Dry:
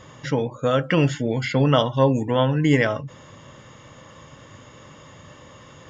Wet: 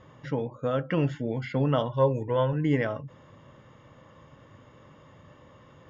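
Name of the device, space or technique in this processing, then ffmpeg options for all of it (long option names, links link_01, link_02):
through cloth: -filter_complex "[0:a]asettb=1/sr,asplit=3[link_01][link_02][link_03];[link_01]atrim=end=1.884[link_04];[link_02]atrim=start=1.88:end=2.53,asetpts=PTS-STARTPTS,afade=type=in:duration=0.004:curve=qsin,afade=type=out:start_time=0.646:duration=0.004:curve=qsin,aecho=1:1:2:0.55,atrim=end_sample=28665[link_05];[link_03]atrim=start=2.526[link_06];[link_04][link_05]acrossfade=duration=0.004:curve1=hsin:curve2=qsin[link_07];[link_07][link_06]acrossfade=duration=0.004:curve1=qsin:curve2=hsin,lowpass=6500,highshelf=frequency=2700:gain=-12,volume=-6.5dB"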